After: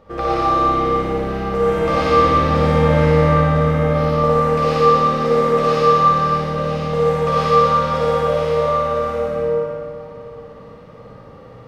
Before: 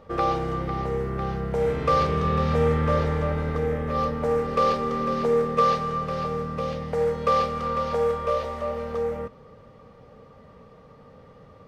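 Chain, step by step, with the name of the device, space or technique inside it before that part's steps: tunnel (flutter echo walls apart 9.9 m, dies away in 0.98 s; reverberation RT60 2.5 s, pre-delay 61 ms, DRR -6.5 dB)

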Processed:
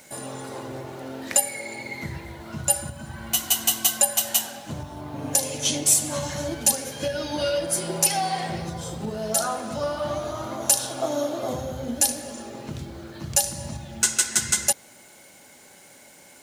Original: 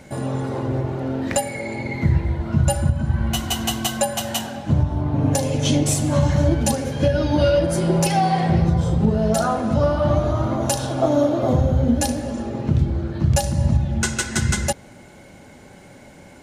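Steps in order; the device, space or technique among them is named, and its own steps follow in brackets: turntable without a phono preamp (RIAA curve recording; white noise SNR 37 dB); trim -5.5 dB

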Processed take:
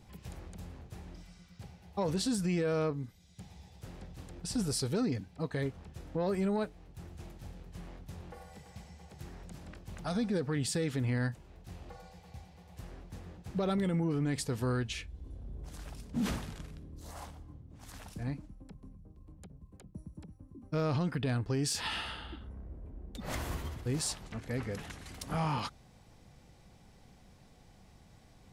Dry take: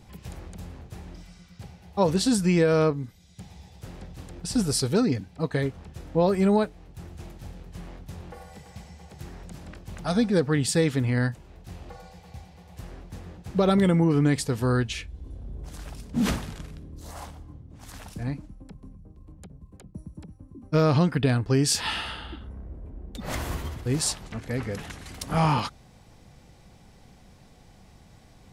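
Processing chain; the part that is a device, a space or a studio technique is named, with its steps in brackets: soft clipper into limiter (saturation -12 dBFS, distortion -24 dB; peak limiter -19 dBFS, peak gain reduction 5 dB); trim -6 dB

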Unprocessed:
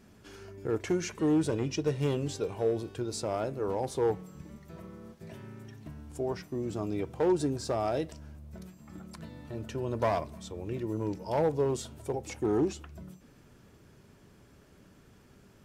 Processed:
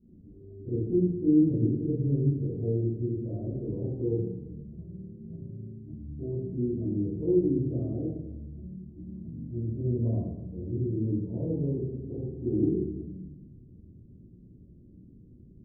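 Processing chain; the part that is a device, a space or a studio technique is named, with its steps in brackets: next room (low-pass 300 Hz 24 dB/octave; reverberation RT60 1.0 s, pre-delay 16 ms, DRR -13 dB); trim -6 dB

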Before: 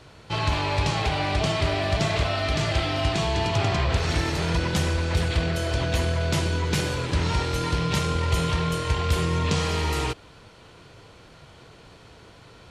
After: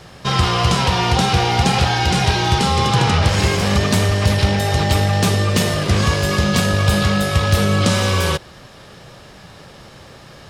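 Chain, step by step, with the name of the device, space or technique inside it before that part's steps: nightcore (tape speed +21%); trim +8 dB

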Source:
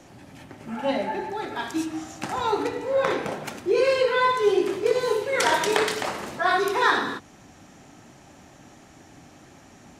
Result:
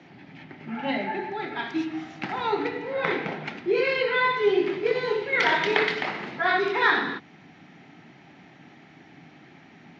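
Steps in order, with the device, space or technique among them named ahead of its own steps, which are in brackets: kitchen radio (cabinet simulation 160–4100 Hz, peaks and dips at 160 Hz +7 dB, 560 Hz -8 dB, 1.1 kHz -5 dB, 2.1 kHz +7 dB); band-stop 7.8 kHz, Q 6.7

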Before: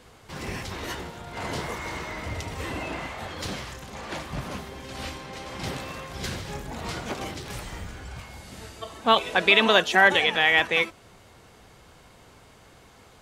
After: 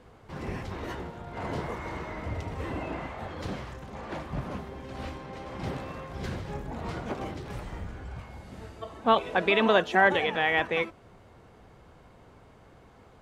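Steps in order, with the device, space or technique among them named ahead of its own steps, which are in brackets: through cloth (treble shelf 2.4 kHz -16 dB)

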